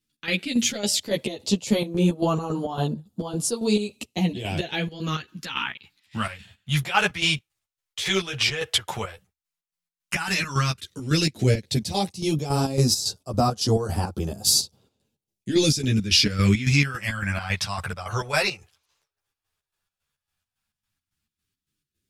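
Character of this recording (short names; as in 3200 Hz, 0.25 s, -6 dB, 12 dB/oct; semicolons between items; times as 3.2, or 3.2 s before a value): phasing stages 2, 0.092 Hz, lowest notch 230–2100 Hz; chopped level 3.6 Hz, depth 65%, duty 55%; a shimmering, thickened sound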